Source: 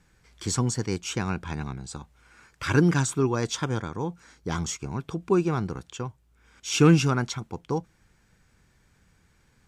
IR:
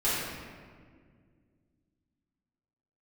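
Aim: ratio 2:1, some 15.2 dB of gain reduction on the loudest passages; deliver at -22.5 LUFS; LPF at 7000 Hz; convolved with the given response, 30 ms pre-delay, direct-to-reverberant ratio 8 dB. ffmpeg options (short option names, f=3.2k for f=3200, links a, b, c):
-filter_complex "[0:a]lowpass=7k,acompressor=threshold=-41dB:ratio=2,asplit=2[a][b];[1:a]atrim=start_sample=2205,adelay=30[c];[b][c]afir=irnorm=-1:irlink=0,volume=-19.5dB[d];[a][d]amix=inputs=2:normalize=0,volume=15dB"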